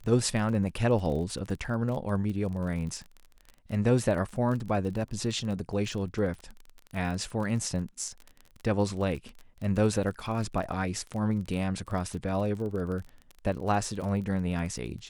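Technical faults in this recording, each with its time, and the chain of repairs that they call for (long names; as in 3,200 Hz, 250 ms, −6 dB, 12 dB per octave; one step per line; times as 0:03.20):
surface crackle 27 per second −35 dBFS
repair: click removal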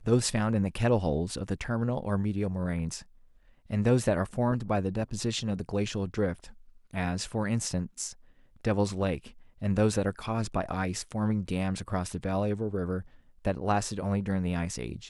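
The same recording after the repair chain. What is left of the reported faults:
none of them is left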